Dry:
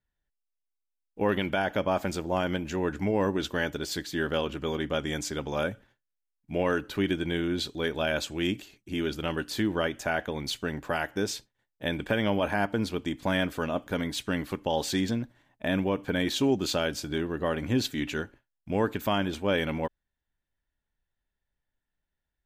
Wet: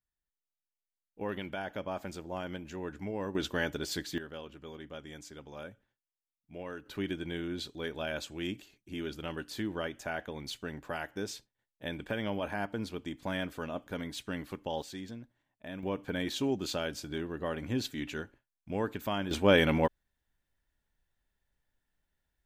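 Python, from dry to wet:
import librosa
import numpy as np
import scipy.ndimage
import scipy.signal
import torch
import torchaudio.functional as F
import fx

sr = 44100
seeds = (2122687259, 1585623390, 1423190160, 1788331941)

y = fx.gain(x, sr, db=fx.steps((0.0, -10.5), (3.35, -3.0), (4.18, -15.5), (6.86, -8.0), (14.82, -15.0), (15.83, -6.5), (19.31, 3.5)))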